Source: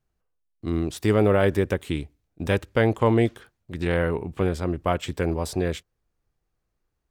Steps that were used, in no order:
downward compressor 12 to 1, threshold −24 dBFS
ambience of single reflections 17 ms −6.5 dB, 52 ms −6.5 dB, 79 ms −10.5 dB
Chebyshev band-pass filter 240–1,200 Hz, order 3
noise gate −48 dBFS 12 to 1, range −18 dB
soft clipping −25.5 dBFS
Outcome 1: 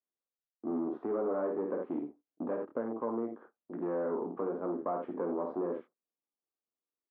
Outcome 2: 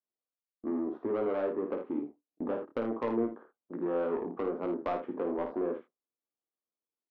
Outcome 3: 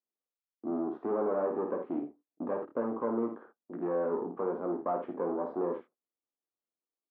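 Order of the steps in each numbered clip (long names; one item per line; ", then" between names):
ambience of single reflections, then downward compressor, then soft clipping, then noise gate, then Chebyshev band-pass filter
downward compressor, then Chebyshev band-pass filter, then noise gate, then soft clipping, then ambience of single reflections
soft clipping, then ambience of single reflections, then noise gate, then downward compressor, then Chebyshev band-pass filter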